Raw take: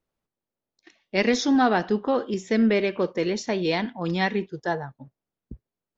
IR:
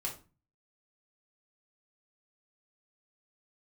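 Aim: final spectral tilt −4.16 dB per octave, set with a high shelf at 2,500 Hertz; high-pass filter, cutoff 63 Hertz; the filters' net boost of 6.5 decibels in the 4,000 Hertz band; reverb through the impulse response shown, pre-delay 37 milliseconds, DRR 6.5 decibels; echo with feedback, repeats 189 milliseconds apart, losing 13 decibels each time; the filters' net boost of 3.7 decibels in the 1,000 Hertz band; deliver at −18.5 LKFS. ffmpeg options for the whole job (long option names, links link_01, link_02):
-filter_complex "[0:a]highpass=63,equalizer=frequency=1000:width_type=o:gain=4.5,highshelf=frequency=2500:gain=4.5,equalizer=frequency=4000:width_type=o:gain=4,aecho=1:1:189|378|567:0.224|0.0493|0.0108,asplit=2[link_01][link_02];[1:a]atrim=start_sample=2205,adelay=37[link_03];[link_02][link_03]afir=irnorm=-1:irlink=0,volume=-8dB[link_04];[link_01][link_04]amix=inputs=2:normalize=0,volume=3dB"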